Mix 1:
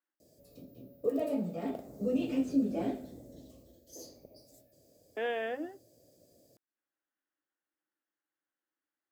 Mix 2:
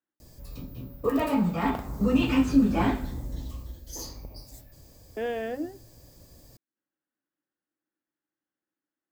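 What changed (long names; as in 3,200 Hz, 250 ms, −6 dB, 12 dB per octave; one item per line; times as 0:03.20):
background: remove drawn EQ curve 640 Hz 0 dB, 950 Hz −25 dB, 11,000 Hz −7 dB
master: remove meter weighting curve A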